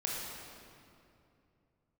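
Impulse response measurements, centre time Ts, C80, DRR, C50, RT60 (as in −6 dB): 133 ms, 0.5 dB, −4.0 dB, −1.5 dB, 2.7 s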